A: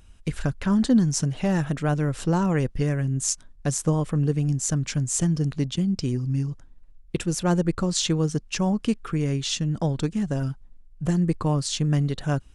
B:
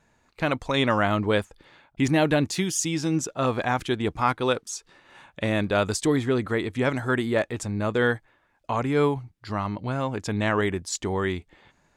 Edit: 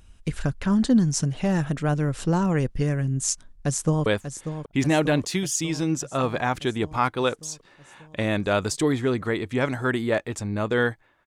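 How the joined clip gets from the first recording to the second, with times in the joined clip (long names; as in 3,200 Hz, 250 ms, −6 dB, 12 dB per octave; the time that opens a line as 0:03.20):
A
0:03.51–0:04.06: delay throw 590 ms, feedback 70%, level −9.5 dB
0:04.06: continue with B from 0:01.30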